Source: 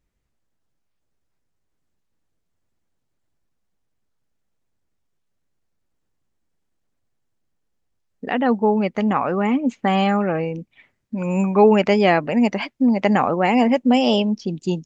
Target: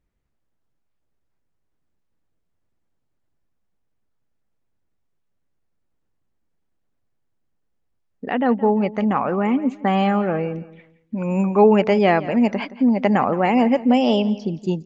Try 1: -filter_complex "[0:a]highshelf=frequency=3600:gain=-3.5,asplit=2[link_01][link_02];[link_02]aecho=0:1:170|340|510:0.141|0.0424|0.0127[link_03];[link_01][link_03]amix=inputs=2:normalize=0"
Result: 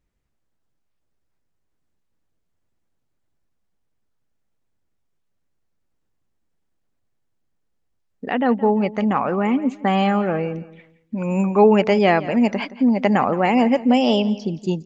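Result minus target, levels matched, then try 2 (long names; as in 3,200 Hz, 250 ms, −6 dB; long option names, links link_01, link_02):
8,000 Hz band +4.5 dB
-filter_complex "[0:a]highshelf=frequency=3600:gain=-9.5,asplit=2[link_01][link_02];[link_02]aecho=0:1:170|340|510:0.141|0.0424|0.0127[link_03];[link_01][link_03]amix=inputs=2:normalize=0"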